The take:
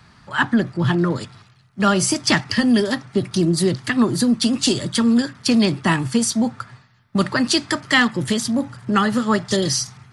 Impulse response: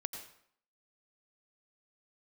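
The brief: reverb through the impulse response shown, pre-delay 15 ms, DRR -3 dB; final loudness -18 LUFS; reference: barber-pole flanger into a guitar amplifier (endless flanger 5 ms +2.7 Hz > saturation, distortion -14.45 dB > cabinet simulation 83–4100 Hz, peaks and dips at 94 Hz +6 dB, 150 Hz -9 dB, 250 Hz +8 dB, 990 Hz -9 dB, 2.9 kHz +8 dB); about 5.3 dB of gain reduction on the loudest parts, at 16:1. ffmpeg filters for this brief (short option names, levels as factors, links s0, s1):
-filter_complex "[0:a]acompressor=threshold=0.141:ratio=16,asplit=2[s0][s1];[1:a]atrim=start_sample=2205,adelay=15[s2];[s1][s2]afir=irnorm=-1:irlink=0,volume=1.5[s3];[s0][s3]amix=inputs=2:normalize=0,asplit=2[s4][s5];[s5]adelay=5,afreqshift=2.7[s6];[s4][s6]amix=inputs=2:normalize=1,asoftclip=threshold=0.158,highpass=83,equalizer=f=94:t=q:w=4:g=6,equalizer=f=150:t=q:w=4:g=-9,equalizer=f=250:t=q:w=4:g=8,equalizer=f=990:t=q:w=4:g=-9,equalizer=f=2900:t=q:w=4:g=8,lowpass=f=4100:w=0.5412,lowpass=f=4100:w=1.3066,volume=1.58"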